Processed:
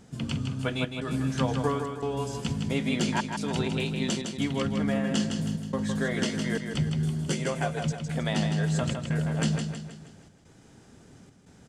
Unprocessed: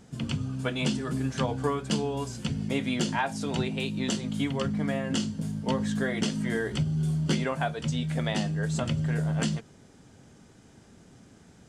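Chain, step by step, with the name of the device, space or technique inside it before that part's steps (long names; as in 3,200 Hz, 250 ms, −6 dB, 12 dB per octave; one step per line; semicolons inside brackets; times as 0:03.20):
0:07.24–0:07.81: octave-band graphic EQ 125/250/500/1,000/4,000/8,000 Hz +3/−7/+3/−5/−5/+6 dB
trance gate with a delay (gate pattern "xxxxx.xxxxx.xx" 89 BPM −60 dB; repeating echo 159 ms, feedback 46%, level −6 dB)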